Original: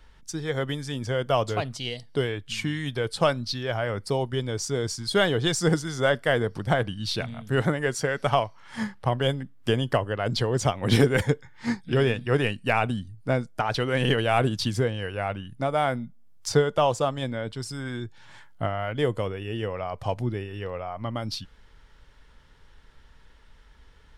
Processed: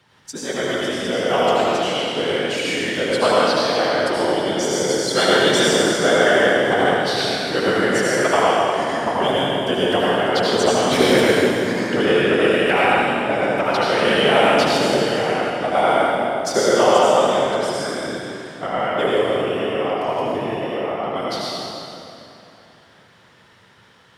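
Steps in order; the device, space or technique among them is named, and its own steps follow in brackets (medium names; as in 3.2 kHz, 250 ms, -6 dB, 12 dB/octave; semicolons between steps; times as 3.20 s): whispering ghost (whisper effect; high-pass 280 Hz 12 dB/octave; reverberation RT60 2.9 s, pre-delay 69 ms, DRR -6.5 dB); trim +2.5 dB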